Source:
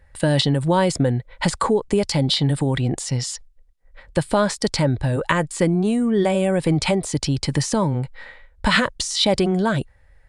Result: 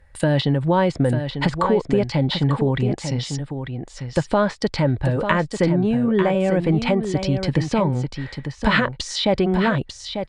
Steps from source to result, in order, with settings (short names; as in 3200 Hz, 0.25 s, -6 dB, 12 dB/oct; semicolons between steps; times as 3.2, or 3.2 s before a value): treble ducked by the level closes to 2900 Hz, closed at -18 dBFS; echo 0.895 s -8 dB